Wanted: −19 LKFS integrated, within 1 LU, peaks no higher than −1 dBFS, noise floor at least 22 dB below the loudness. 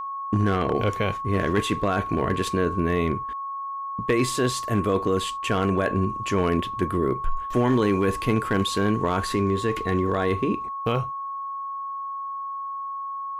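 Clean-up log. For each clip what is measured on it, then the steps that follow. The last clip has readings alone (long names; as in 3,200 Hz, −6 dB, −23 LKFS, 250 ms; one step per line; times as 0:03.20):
share of clipped samples 0.3%; peaks flattened at −13.5 dBFS; interfering tone 1,100 Hz; level of the tone −29 dBFS; integrated loudness −25.0 LKFS; sample peak −13.5 dBFS; target loudness −19.0 LKFS
→ clipped peaks rebuilt −13.5 dBFS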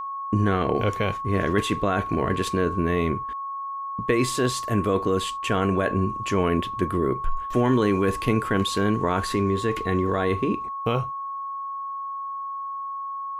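share of clipped samples 0.0%; interfering tone 1,100 Hz; level of the tone −29 dBFS
→ notch filter 1,100 Hz, Q 30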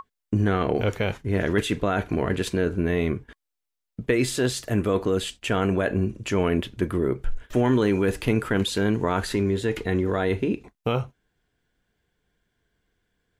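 interfering tone none found; integrated loudness −25.0 LKFS; sample peak −7.5 dBFS; target loudness −19.0 LKFS
→ level +6 dB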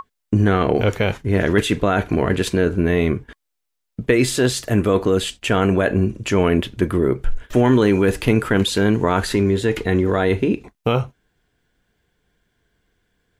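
integrated loudness −19.0 LKFS; sample peak −1.5 dBFS; background noise floor −77 dBFS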